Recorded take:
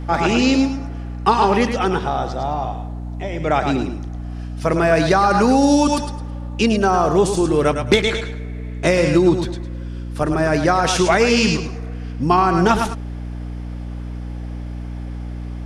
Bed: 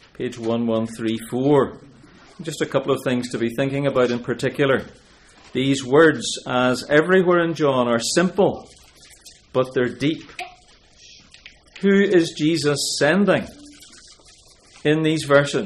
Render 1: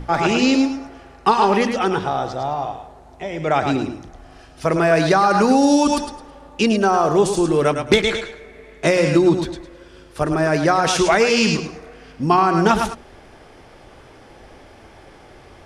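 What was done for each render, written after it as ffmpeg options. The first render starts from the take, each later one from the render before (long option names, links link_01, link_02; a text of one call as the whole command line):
ffmpeg -i in.wav -af "bandreject=frequency=60:width_type=h:width=6,bandreject=frequency=120:width_type=h:width=6,bandreject=frequency=180:width_type=h:width=6,bandreject=frequency=240:width_type=h:width=6,bandreject=frequency=300:width_type=h:width=6" out.wav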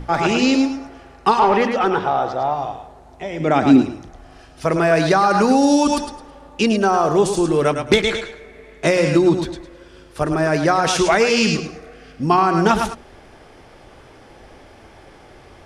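ffmpeg -i in.wav -filter_complex "[0:a]asettb=1/sr,asplit=3[link_01][link_02][link_03];[link_01]atrim=end=1.394[link_04];[link_02]atrim=start=1.39:end=2.54,asetpts=PTS-STARTPTS,afade=type=in:duration=0.004:curve=qsin,afade=type=out:start_time=1.146:duration=0.004:curve=qsin,asplit=2[link_05][link_06];[link_06]highpass=frequency=720:poles=1,volume=13dB,asoftclip=type=tanh:threshold=-4dB[link_07];[link_05][link_07]amix=inputs=2:normalize=0,lowpass=frequency=1200:poles=1,volume=-6dB[link_08];[link_03]atrim=start=2.536[link_09];[link_04][link_08]acrossfade=duration=0.004:curve1=hsin:curve2=qsin[link_10];[link_10][link_09]acrossfade=duration=0.004:curve1=qsin:curve2=hsin,asettb=1/sr,asplit=3[link_11][link_12][link_13];[link_11]atrim=end=3.404[link_14];[link_12]atrim=start=3.4:end=3.82,asetpts=PTS-STARTPTS,afade=type=in:duration=0.004:curve=qsin,afade=type=out:start_time=0.416:duration=0.004:curve=qsin,equalizer=frequency=250:width_type=o:width=0.79:gain=13[link_15];[link_13]atrim=start=3.816[link_16];[link_14][link_15]acrossfade=duration=0.004:curve1=hsin:curve2=qsin[link_17];[link_17][link_16]acrossfade=duration=0.004:curve1=qsin:curve2=hsin,asettb=1/sr,asplit=3[link_18][link_19][link_20];[link_18]atrim=end=11.434[link_21];[link_19]atrim=start=11.43:end=12.25,asetpts=PTS-STARTPTS,afade=type=in:duration=0.004:curve=qsin,afade=type=out:start_time=0.816:duration=0.004:curve=qsin,asuperstop=centerf=960:order=4:qfactor=5.4[link_22];[link_20]atrim=start=12.246[link_23];[link_21][link_22]acrossfade=duration=0.004:curve1=hsin:curve2=qsin[link_24];[link_24][link_23]acrossfade=duration=0.004:curve1=qsin:curve2=hsin" out.wav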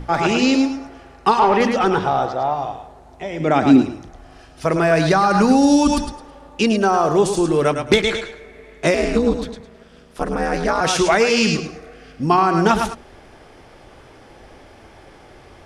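ffmpeg -i in.wav -filter_complex "[0:a]asettb=1/sr,asplit=3[link_01][link_02][link_03];[link_01]atrim=end=1.604[link_04];[link_02]atrim=start=1.6:end=2.26,asetpts=PTS-STARTPTS,afade=type=in:duration=0.004:curve=qsin,afade=type=out:start_time=0.656:duration=0.004:curve=qsin,bass=frequency=250:gain=6,treble=frequency=4000:gain=7[link_05];[link_03]atrim=start=2.256[link_06];[link_04][link_05]acrossfade=duration=0.004:curve1=hsin:curve2=qsin[link_07];[link_07][link_06]acrossfade=duration=0.004:curve1=qsin:curve2=hsin,asettb=1/sr,asplit=3[link_08][link_09][link_10];[link_08]atrim=end=4.724[link_11];[link_09]atrim=start=4.72:end=6.12,asetpts=PTS-STARTPTS,afade=type=in:duration=0.004:curve=qsin,afade=type=out:start_time=1.396:duration=0.004:curve=qsin,asubboost=boost=7.5:cutoff=230[link_12];[link_10]atrim=start=6.116[link_13];[link_11][link_12]acrossfade=duration=0.004:curve1=hsin:curve2=qsin[link_14];[link_14][link_13]acrossfade=duration=0.004:curve1=qsin:curve2=hsin,asettb=1/sr,asplit=3[link_15][link_16][link_17];[link_15]atrim=end=8.944[link_18];[link_16]atrim=start=8.94:end=10.81,asetpts=PTS-STARTPTS,afade=type=in:duration=0.004:curve=qsin,afade=type=out:start_time=1.866:duration=0.004:curve=qsin,aeval=exprs='val(0)*sin(2*PI*120*n/s)':channel_layout=same[link_19];[link_17]atrim=start=10.806[link_20];[link_18][link_19]acrossfade=duration=0.004:curve1=hsin:curve2=qsin[link_21];[link_21][link_20]acrossfade=duration=0.004:curve1=qsin:curve2=hsin" out.wav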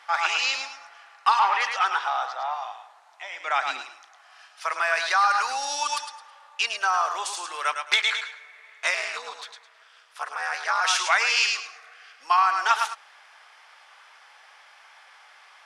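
ffmpeg -i in.wav -af "highpass=frequency=1000:width=0.5412,highpass=frequency=1000:width=1.3066,highshelf=frequency=9400:gain=-10" out.wav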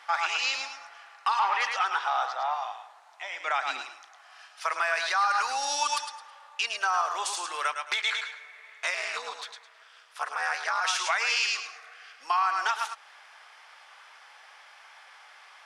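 ffmpeg -i in.wav -af "alimiter=limit=-16dB:level=0:latency=1:release=274" out.wav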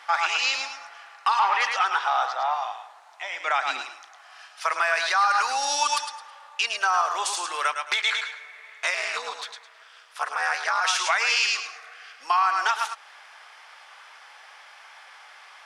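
ffmpeg -i in.wav -af "volume=4dB" out.wav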